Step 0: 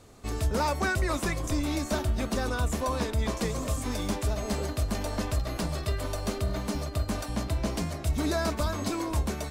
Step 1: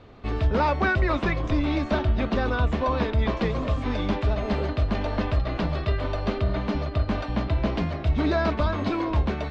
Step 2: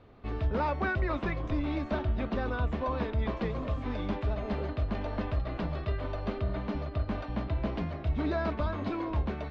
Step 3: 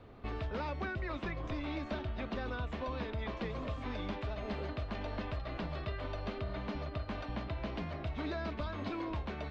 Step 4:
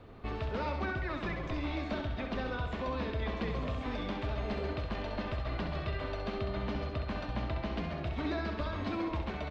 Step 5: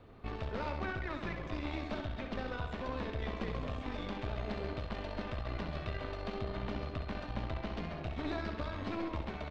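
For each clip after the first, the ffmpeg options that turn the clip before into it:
ffmpeg -i in.wav -af "lowpass=frequency=3600:width=0.5412,lowpass=frequency=3600:width=1.3066,volume=5dB" out.wav
ffmpeg -i in.wav -af "highshelf=frequency=4300:gain=-9.5,volume=-7dB" out.wav
ffmpeg -i in.wav -filter_complex "[0:a]acrossover=split=510|2000[link_01][link_02][link_03];[link_01]acompressor=threshold=-40dB:ratio=4[link_04];[link_02]acompressor=threshold=-46dB:ratio=4[link_05];[link_03]acompressor=threshold=-49dB:ratio=4[link_06];[link_04][link_05][link_06]amix=inputs=3:normalize=0,volume=1.5dB" out.wav
ffmpeg -i in.wav -af "aecho=1:1:66|132|198|264|330|396|462|528:0.473|0.279|0.165|0.0972|0.0573|0.0338|0.02|0.0118,volume=2dB" out.wav
ffmpeg -i in.wav -af "aeval=exprs='(tanh(22.4*val(0)+0.8)-tanh(0.8))/22.4':channel_layout=same,volume=1dB" out.wav

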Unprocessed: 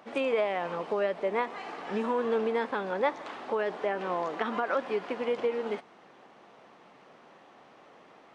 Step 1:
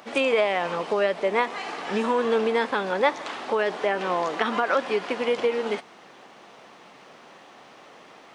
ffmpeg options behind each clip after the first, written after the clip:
ffmpeg -i in.wav -af "highshelf=frequency=2600:gain=10,volume=5dB" out.wav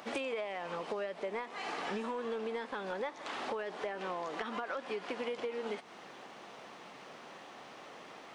ffmpeg -i in.wav -af "acompressor=threshold=-32dB:ratio=10,asoftclip=type=tanh:threshold=-23dB,volume=-2dB" out.wav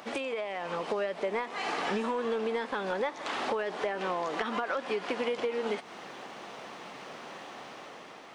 ffmpeg -i in.wav -af "dynaudnorm=framelen=190:gausssize=7:maxgain=4dB,volume=2.5dB" out.wav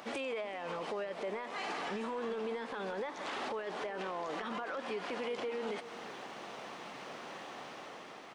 ffmpeg -i in.wav -filter_complex "[0:a]alimiter=level_in=5dB:limit=-24dB:level=0:latency=1:release=22,volume=-5dB,asplit=2[link_01][link_02];[link_02]adelay=379,volume=-14dB,highshelf=frequency=4000:gain=-8.53[link_03];[link_01][link_03]amix=inputs=2:normalize=0,volume=-2dB" out.wav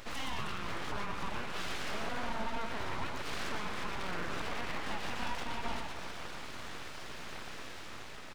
ffmpeg -i in.wav -af "aecho=1:1:120|312|619.2|1111|1897:0.631|0.398|0.251|0.158|0.1,aeval=exprs='abs(val(0))':channel_layout=same,volume=2dB" out.wav

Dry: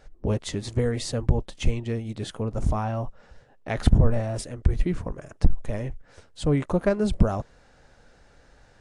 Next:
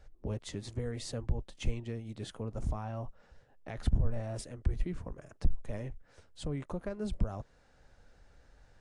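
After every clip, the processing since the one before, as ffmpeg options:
ffmpeg -i in.wav -filter_complex "[0:a]acrossover=split=100[link_01][link_02];[link_01]acompressor=mode=upward:threshold=-41dB:ratio=2.5[link_03];[link_02]alimiter=limit=-19.5dB:level=0:latency=1:release=316[link_04];[link_03][link_04]amix=inputs=2:normalize=0,volume=-9dB" out.wav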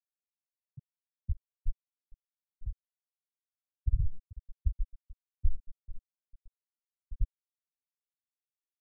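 ffmpeg -i in.wav -af "aecho=1:1:436|872|1308|1744|2180:0.299|0.149|0.0746|0.0373|0.0187,acrusher=bits=7:mix=0:aa=0.000001,afftfilt=real='re*gte(hypot(re,im),0.355)':imag='im*gte(hypot(re,im),0.355)':win_size=1024:overlap=0.75,volume=1dB" out.wav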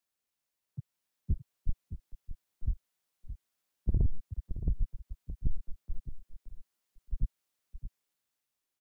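ffmpeg -i in.wav -filter_complex "[0:a]acrossover=split=110|120[link_01][link_02][link_03];[link_03]dynaudnorm=framelen=220:gausssize=9:maxgain=4dB[link_04];[link_01][link_02][link_04]amix=inputs=3:normalize=0,asoftclip=type=tanh:threshold=-30dB,aecho=1:1:619:0.266,volume=8.5dB" out.wav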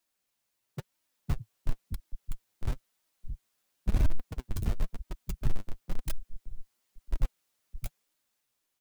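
ffmpeg -i in.wav -filter_complex "[0:a]asplit=2[link_01][link_02];[link_02]aeval=exprs='(mod(44.7*val(0)+1,2)-1)/44.7':channel_layout=same,volume=-5dB[link_03];[link_01][link_03]amix=inputs=2:normalize=0,flanger=delay=3.1:depth=6.5:regen=41:speed=0.98:shape=sinusoidal,volume=6dB" out.wav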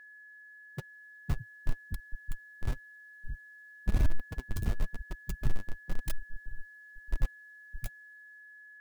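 ffmpeg -i in.wav -af "aeval=exprs='val(0)+0.00355*sin(2*PI*1700*n/s)':channel_layout=same,volume=-1dB" out.wav

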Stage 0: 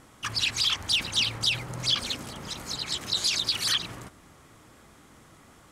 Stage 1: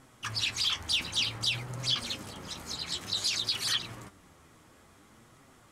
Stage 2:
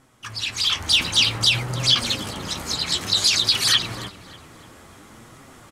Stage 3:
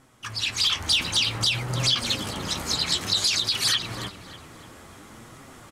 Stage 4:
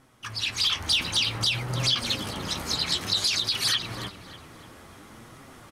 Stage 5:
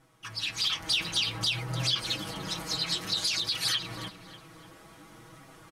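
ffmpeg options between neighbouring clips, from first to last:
ffmpeg -i in.wav -af "flanger=delay=7.3:depth=5.5:regen=52:speed=0.55:shape=triangular" out.wav
ffmpeg -i in.wav -filter_complex "[0:a]asplit=2[link_01][link_02];[link_02]adelay=295,lowpass=frequency=3500:poles=1,volume=-17dB,asplit=2[link_03][link_04];[link_04]adelay=295,lowpass=frequency=3500:poles=1,volume=0.49,asplit=2[link_05][link_06];[link_06]adelay=295,lowpass=frequency=3500:poles=1,volume=0.49,asplit=2[link_07][link_08];[link_08]adelay=295,lowpass=frequency=3500:poles=1,volume=0.49[link_09];[link_01][link_03][link_05][link_07][link_09]amix=inputs=5:normalize=0,dynaudnorm=framelen=190:gausssize=7:maxgain=12dB" out.wav
ffmpeg -i in.wav -af "alimiter=limit=-12.5dB:level=0:latency=1:release=283" out.wav
ffmpeg -i in.wav -af "equalizer=frequency=7400:width_type=o:width=0.32:gain=-5.5,volume=-1.5dB" out.wav
ffmpeg -i in.wav -af "aecho=1:1:6.2:0.91,volume=-6.5dB" out.wav

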